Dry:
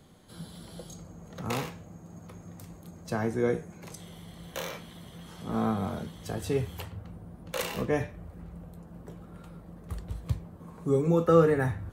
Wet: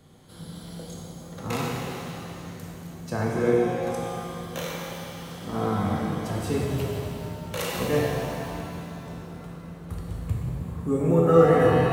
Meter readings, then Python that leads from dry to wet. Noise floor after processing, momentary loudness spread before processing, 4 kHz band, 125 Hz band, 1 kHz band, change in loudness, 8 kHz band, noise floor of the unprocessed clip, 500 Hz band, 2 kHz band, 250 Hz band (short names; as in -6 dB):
-42 dBFS, 22 LU, +5.5 dB, +5.5 dB, +6.5 dB, +4.0 dB, +5.0 dB, -50 dBFS, +5.5 dB, +5.0 dB, +5.0 dB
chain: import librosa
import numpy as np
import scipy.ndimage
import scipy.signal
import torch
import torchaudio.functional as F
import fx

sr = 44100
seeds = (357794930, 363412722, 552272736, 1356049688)

y = fx.spec_box(x, sr, start_s=10.15, length_s=1.19, low_hz=3000.0, high_hz=6700.0, gain_db=-8)
y = fx.rev_shimmer(y, sr, seeds[0], rt60_s=3.0, semitones=7, shimmer_db=-8, drr_db=-2.5)